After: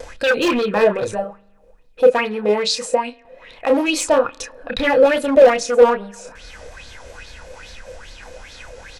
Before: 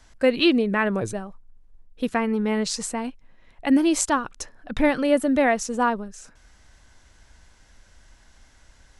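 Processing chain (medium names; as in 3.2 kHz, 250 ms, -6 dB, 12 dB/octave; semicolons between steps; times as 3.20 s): upward compressor, threshold -28 dBFS; gate with hold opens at -38 dBFS; vibrato 5.1 Hz 64 cents; doubling 29 ms -5 dB; small resonant body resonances 500/2500 Hz, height 15 dB, ringing for 55 ms; hard clipper -15 dBFS, distortion -6 dB; 1.24–3.88 s: bass shelf 160 Hz -10 dB; reverberation RT60 1.0 s, pre-delay 40 ms, DRR 19 dB; sweeping bell 2.4 Hz 490–4300 Hz +15 dB; trim -1.5 dB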